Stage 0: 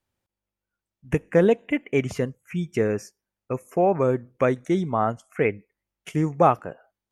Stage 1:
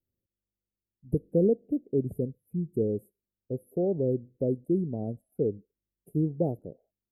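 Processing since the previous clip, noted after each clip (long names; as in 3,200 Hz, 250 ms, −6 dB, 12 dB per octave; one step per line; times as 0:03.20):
inverse Chebyshev band-stop filter 1,100–6,300 Hz, stop band 50 dB
level −3.5 dB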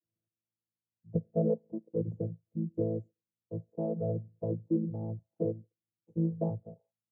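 channel vocoder with a chord as carrier bare fifth, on A2
parametric band 140 Hz −5.5 dB 2.5 octaves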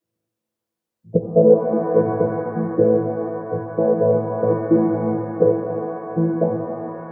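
fade-out on the ending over 0.88 s
octave-band graphic EQ 250/500/1,000 Hz +5/+9/+4 dB
reverb with rising layers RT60 3.1 s, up +7 semitones, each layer −8 dB, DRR 4 dB
level +7.5 dB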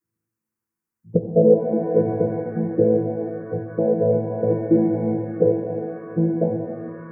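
phaser swept by the level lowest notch 600 Hz, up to 1,200 Hz, full sweep at −19 dBFS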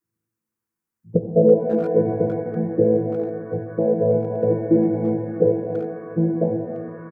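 far-end echo of a speakerphone 330 ms, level −14 dB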